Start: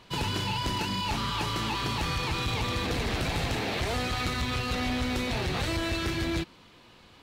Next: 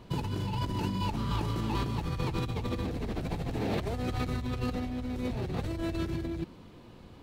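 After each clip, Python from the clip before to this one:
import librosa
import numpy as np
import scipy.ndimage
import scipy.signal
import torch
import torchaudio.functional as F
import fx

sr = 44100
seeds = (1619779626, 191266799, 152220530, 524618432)

y = fx.tilt_shelf(x, sr, db=9.0, hz=900.0)
y = fx.over_compress(y, sr, threshold_db=-28.0, ratio=-1.0)
y = fx.high_shelf(y, sr, hz=8200.0, db=9.5)
y = F.gain(torch.from_numpy(y), -4.5).numpy()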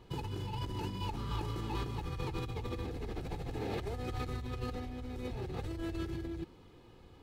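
y = x + 0.42 * np.pad(x, (int(2.4 * sr / 1000.0), 0))[:len(x)]
y = F.gain(torch.from_numpy(y), -6.5).numpy()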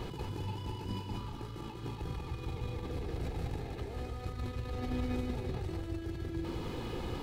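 y = fx.over_compress(x, sr, threshold_db=-45.0, ratio=-0.5)
y = y + 10.0 ** (-3.0 / 20.0) * np.pad(y, (int(193 * sr / 1000.0), 0))[:len(y)]
y = F.gain(torch.from_numpy(y), 8.0).numpy()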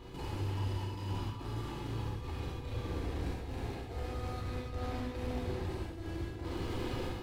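y = fx.step_gate(x, sr, bpm=108, pattern='.xxxxx.xx', floor_db=-12.0, edge_ms=4.5)
y = 10.0 ** (-39.5 / 20.0) * np.tanh(y / 10.0 ** (-39.5 / 20.0))
y = fx.rev_gated(y, sr, seeds[0], gate_ms=160, shape='flat', drr_db=-5.0)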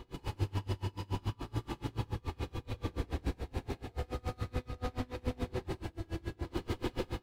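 y = x * 10.0 ** (-30 * (0.5 - 0.5 * np.cos(2.0 * np.pi * 7.0 * np.arange(len(x)) / sr)) / 20.0)
y = F.gain(torch.from_numpy(y), 6.0).numpy()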